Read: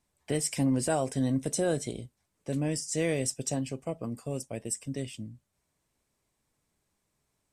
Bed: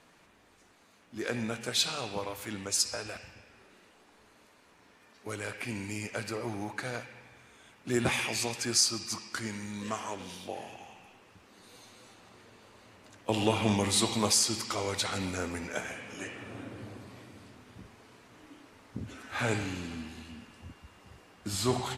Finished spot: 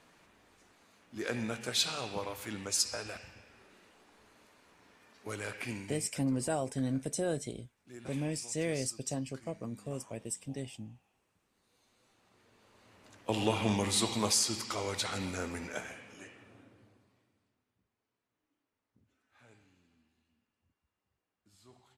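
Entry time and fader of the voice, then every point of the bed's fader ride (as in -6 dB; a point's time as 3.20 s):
5.60 s, -5.0 dB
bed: 5.71 s -2 dB
6.22 s -20.5 dB
11.64 s -20.5 dB
13.13 s -3 dB
15.68 s -3 dB
17.78 s -31.5 dB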